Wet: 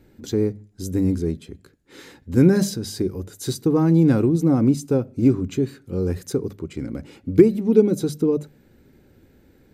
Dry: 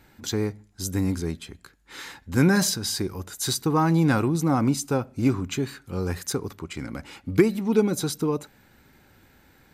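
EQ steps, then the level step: resonant low shelf 640 Hz +10 dB, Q 1.5; hum notches 50/100/150/200 Hz; -6.0 dB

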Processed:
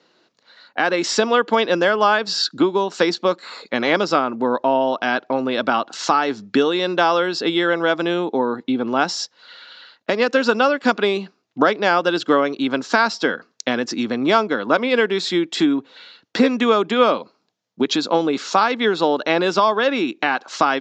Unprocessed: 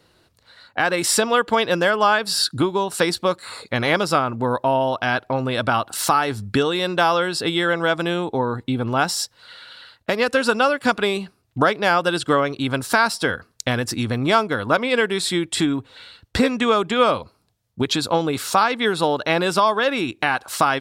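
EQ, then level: high-pass 200 Hz 24 dB/octave; steep low-pass 7 kHz 72 dB/octave; dynamic bell 290 Hz, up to +4 dB, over -33 dBFS, Q 0.76; 0.0 dB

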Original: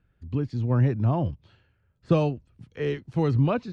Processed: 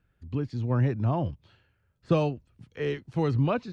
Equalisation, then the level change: bass shelf 450 Hz -3.5 dB; 0.0 dB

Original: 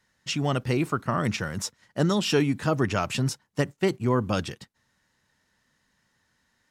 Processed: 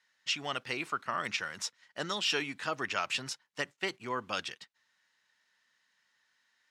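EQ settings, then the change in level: band-pass filter 2.8 kHz, Q 0.71; 0.0 dB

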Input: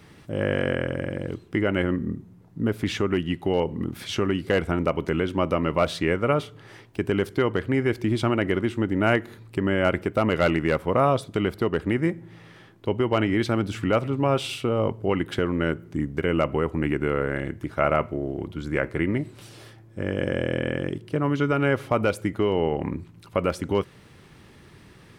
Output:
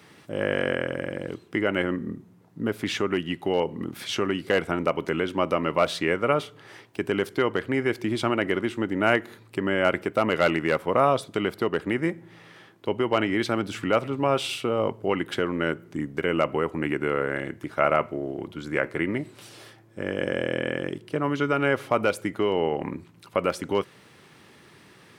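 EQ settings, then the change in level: high-pass 110 Hz; bass shelf 270 Hz -8 dB; +1.5 dB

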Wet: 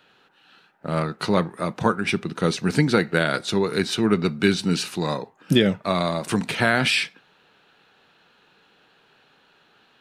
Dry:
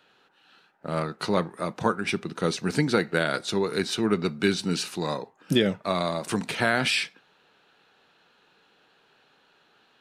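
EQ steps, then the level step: tone controls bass +4 dB, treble -10 dB; treble shelf 4 kHz +11 dB; +2.5 dB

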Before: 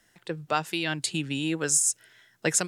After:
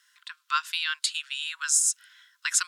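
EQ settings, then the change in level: rippled Chebyshev high-pass 1 kHz, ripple 6 dB; +5.0 dB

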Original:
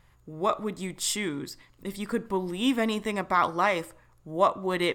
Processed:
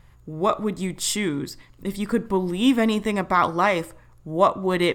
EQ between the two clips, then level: bass shelf 310 Hz +6 dB; +3.5 dB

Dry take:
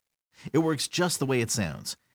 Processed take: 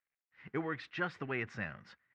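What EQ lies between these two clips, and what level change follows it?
four-pole ladder low-pass 2.2 kHz, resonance 45%; tilt shelf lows -5.5 dB, about 1.4 kHz; band-stop 910 Hz, Q 15; 0.0 dB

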